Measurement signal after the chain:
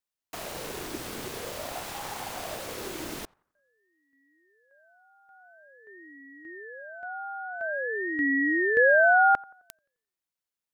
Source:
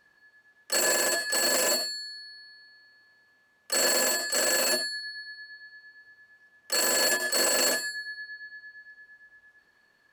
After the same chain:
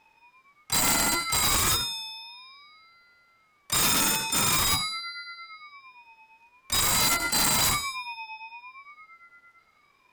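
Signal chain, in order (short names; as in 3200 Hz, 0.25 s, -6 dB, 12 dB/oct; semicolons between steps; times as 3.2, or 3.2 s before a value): wrapped overs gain 17 dB; narrowing echo 87 ms, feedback 47%, band-pass 810 Hz, level -23 dB; ring modulator with a swept carrier 570 Hz, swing 45%, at 0.48 Hz; gain +4.5 dB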